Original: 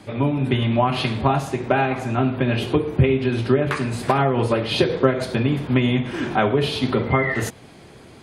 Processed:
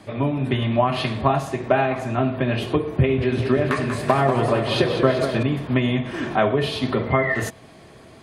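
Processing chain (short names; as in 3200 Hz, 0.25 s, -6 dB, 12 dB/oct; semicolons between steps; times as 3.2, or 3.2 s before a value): small resonant body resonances 650/1100/1800 Hz, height 8 dB; 2.9–5.43 warbling echo 0.193 s, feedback 66%, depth 99 cents, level -8 dB; gain -2 dB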